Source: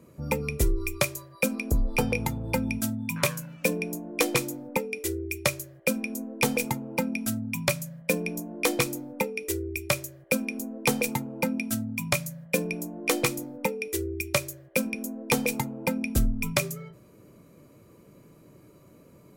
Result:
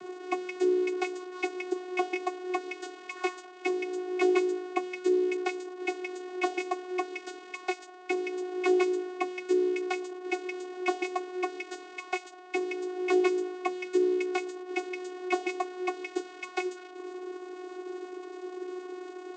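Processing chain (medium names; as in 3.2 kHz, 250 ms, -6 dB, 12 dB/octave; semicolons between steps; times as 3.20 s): one-bit delta coder 64 kbps, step -34.5 dBFS; vocoder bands 16, saw 365 Hz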